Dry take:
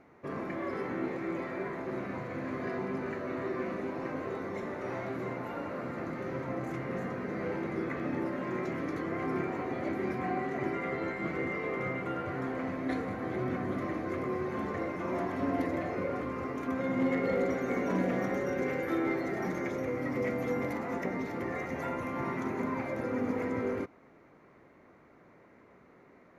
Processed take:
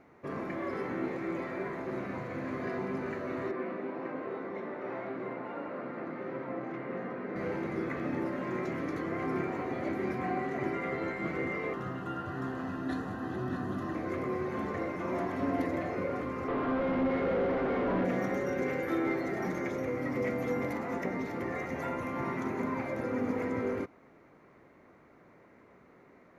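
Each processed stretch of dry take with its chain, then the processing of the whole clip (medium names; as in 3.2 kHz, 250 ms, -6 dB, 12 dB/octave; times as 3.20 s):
3.51–7.36 s: high-pass 210 Hz + distance through air 260 m
11.73–13.95 s: Butterworth band-stop 2.2 kHz, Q 3.5 + peaking EQ 510 Hz -9 dB 0.65 oct + delay 635 ms -10 dB
16.48–18.05 s: overdrive pedal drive 30 dB, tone 1.5 kHz, clips at -21.5 dBFS + tape spacing loss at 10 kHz 35 dB
whole clip: none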